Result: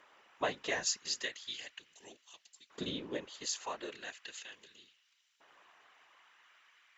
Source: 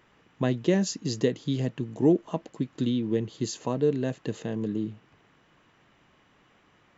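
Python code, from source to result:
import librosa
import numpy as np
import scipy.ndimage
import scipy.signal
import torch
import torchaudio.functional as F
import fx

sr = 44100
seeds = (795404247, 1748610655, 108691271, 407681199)

y = fx.filter_lfo_highpass(x, sr, shape='saw_up', hz=0.37, low_hz=570.0, high_hz=5000.0, q=1.0)
y = fx.whisperise(y, sr, seeds[0])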